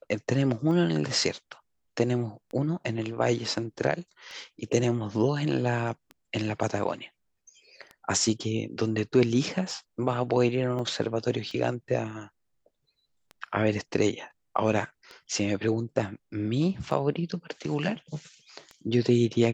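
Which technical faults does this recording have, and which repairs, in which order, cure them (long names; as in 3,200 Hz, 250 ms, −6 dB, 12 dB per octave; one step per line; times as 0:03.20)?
scratch tick 33 1/3 rpm −27 dBFS
0:10.79: drop-out 2.7 ms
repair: click removal
repair the gap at 0:10.79, 2.7 ms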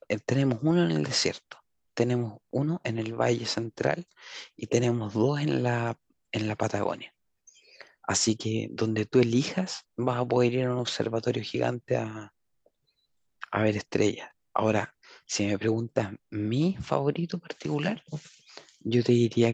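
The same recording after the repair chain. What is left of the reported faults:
none of them is left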